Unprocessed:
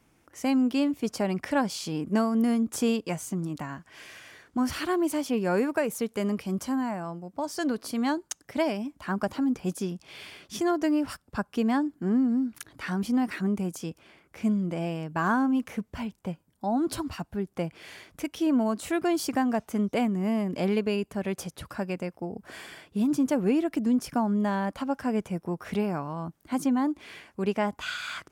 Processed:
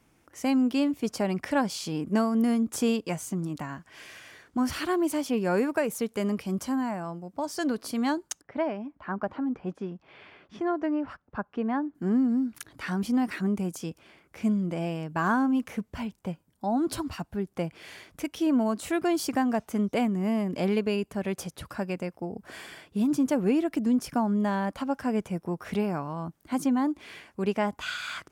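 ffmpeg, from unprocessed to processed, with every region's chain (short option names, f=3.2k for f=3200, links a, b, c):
-filter_complex "[0:a]asettb=1/sr,asplit=3[a][b][c];[a]atrim=end=8.414[d];[b]atrim=start=8.41:end=11.95,asetpts=PTS-STARTPTS,afade=t=in:d=0.004:c=qsin,afade=t=out:st=3.536:d=0.004:c=qsin,lowpass=1.7k,lowshelf=f=340:g=-6[e];[c]atrim=start=11.946[f];[d][e]acrossfade=d=0.004:c1=hsin:c2=qsin[g];[g][f]acrossfade=d=0.004:c1=qsin:c2=hsin"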